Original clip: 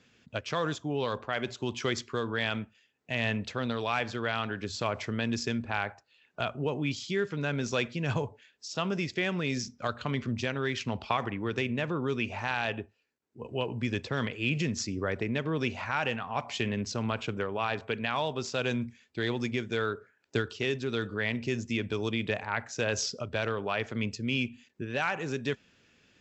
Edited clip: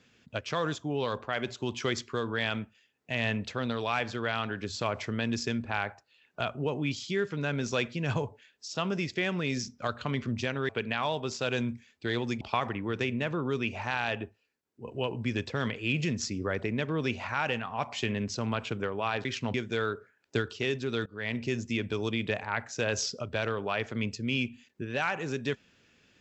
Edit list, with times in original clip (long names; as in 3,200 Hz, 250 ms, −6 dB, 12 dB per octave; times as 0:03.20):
0:10.69–0:10.98: swap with 0:17.82–0:19.54
0:21.06–0:21.36: fade in, from −24 dB